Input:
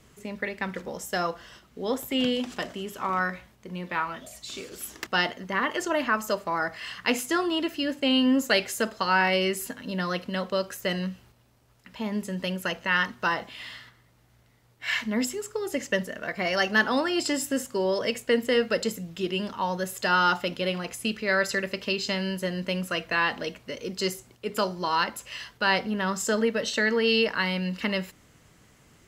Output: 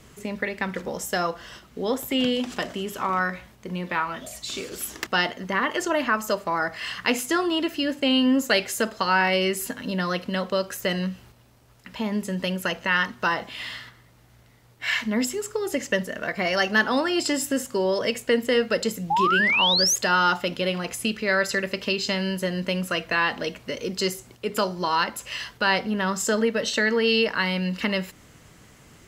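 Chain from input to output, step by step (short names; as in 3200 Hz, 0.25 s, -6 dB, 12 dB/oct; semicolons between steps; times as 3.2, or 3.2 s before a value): in parallel at +0.5 dB: compressor, threshold -34 dBFS, peak gain reduction 16.5 dB; on the sum: painted sound rise, 19.1–19.96, 780–6800 Hz -21 dBFS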